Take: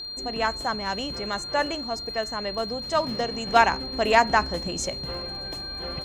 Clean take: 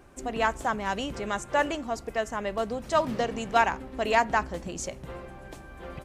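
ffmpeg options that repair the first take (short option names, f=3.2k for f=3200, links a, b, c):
-af "adeclick=t=4,bandreject=f=4.2k:w=30,asetnsamples=n=441:p=0,asendcmd='3.47 volume volume -4.5dB',volume=0dB"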